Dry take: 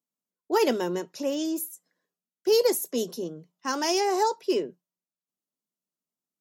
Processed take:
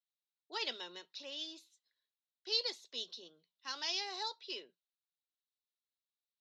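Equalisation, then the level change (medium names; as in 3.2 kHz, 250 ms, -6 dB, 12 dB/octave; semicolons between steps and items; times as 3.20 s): band-pass filter 3.9 kHz, Q 5.3; distance through air 160 m; +9.5 dB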